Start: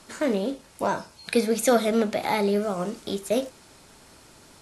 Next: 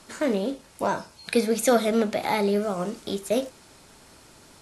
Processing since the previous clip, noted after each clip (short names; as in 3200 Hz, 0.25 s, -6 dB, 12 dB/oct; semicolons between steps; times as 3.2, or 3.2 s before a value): nothing audible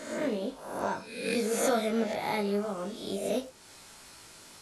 spectral swells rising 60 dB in 0.78 s; chorus 0.5 Hz, delay 18 ms, depth 2.8 ms; mismatched tape noise reduction encoder only; gain -5.5 dB